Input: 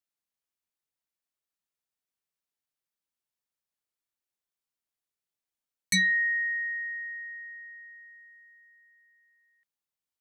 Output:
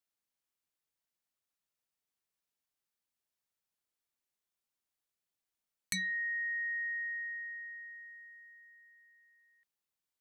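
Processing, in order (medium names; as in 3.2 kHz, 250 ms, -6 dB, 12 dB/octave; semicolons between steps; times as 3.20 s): compression 10:1, threshold -34 dBFS, peak gain reduction 12.5 dB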